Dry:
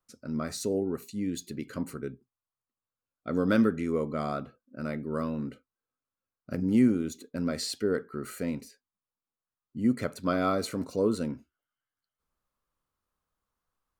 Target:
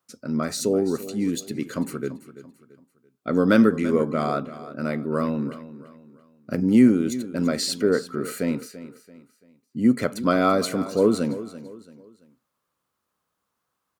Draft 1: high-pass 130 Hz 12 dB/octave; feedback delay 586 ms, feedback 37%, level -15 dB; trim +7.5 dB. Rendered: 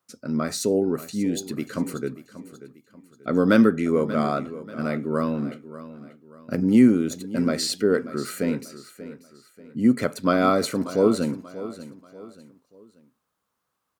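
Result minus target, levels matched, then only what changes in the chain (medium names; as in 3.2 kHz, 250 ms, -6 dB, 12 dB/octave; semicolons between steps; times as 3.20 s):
echo 249 ms late
change: feedback delay 337 ms, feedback 37%, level -15 dB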